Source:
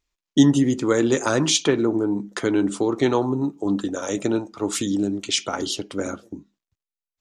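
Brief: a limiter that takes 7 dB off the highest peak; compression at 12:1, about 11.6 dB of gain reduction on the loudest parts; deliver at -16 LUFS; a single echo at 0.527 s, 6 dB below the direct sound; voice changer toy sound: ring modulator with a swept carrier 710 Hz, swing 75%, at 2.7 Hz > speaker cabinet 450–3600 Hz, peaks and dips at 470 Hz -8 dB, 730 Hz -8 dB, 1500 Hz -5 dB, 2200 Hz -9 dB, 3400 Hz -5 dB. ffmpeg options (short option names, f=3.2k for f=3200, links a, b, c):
-af "acompressor=threshold=-21dB:ratio=12,alimiter=limit=-17dB:level=0:latency=1,aecho=1:1:527:0.501,aeval=exprs='val(0)*sin(2*PI*710*n/s+710*0.75/2.7*sin(2*PI*2.7*n/s))':c=same,highpass=450,equalizer=f=470:t=q:w=4:g=-8,equalizer=f=730:t=q:w=4:g=-8,equalizer=f=1.5k:t=q:w=4:g=-5,equalizer=f=2.2k:t=q:w=4:g=-9,equalizer=f=3.4k:t=q:w=4:g=-5,lowpass=f=3.6k:w=0.5412,lowpass=f=3.6k:w=1.3066,volume=20dB"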